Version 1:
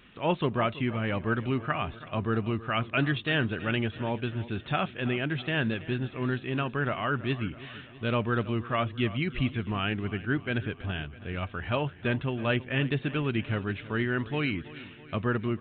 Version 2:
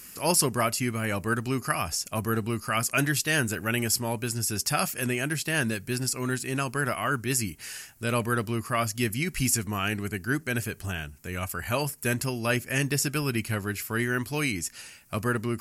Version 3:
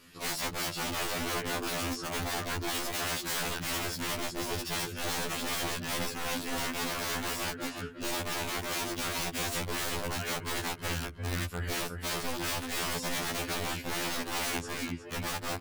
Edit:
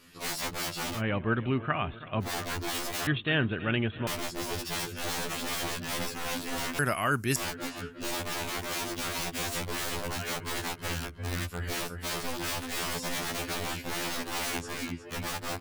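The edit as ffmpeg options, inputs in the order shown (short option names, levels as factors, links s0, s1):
-filter_complex "[0:a]asplit=2[s0][s1];[2:a]asplit=4[s2][s3][s4][s5];[s2]atrim=end=1.02[s6];[s0]atrim=start=0.92:end=2.3[s7];[s3]atrim=start=2.2:end=3.072[s8];[s1]atrim=start=3.068:end=4.072[s9];[s4]atrim=start=4.068:end=6.792[s10];[1:a]atrim=start=6.788:end=7.362[s11];[s5]atrim=start=7.358[s12];[s6][s7]acrossfade=d=0.1:c1=tri:c2=tri[s13];[s13][s8]acrossfade=d=0.1:c1=tri:c2=tri[s14];[s14][s9]acrossfade=d=0.004:c1=hsin:c2=hsin[s15];[s15][s10]acrossfade=d=0.004:c1=hsin:c2=hsin[s16];[s16][s11]acrossfade=d=0.004:c1=hsin:c2=hsin[s17];[s17][s12]acrossfade=d=0.004:c1=hsin:c2=hsin"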